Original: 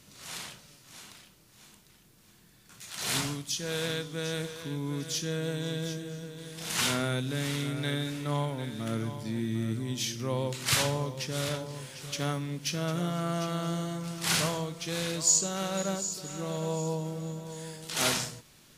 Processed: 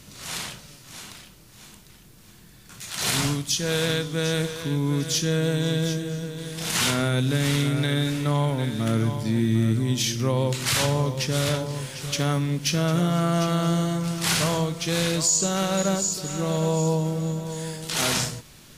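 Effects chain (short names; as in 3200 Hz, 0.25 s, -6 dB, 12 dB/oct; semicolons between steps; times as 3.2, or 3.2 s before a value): low shelf 110 Hz +7 dB; limiter -20.5 dBFS, peak gain reduction 9 dB; gain +8 dB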